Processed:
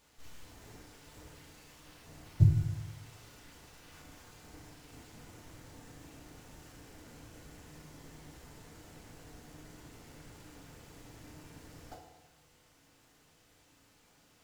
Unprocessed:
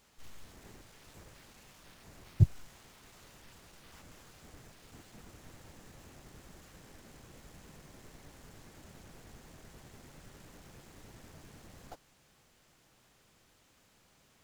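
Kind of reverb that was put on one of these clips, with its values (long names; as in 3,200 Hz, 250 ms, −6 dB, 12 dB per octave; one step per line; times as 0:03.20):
feedback delay network reverb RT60 1.2 s, low-frequency decay 1×, high-frequency decay 0.9×, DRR −0.5 dB
level −2 dB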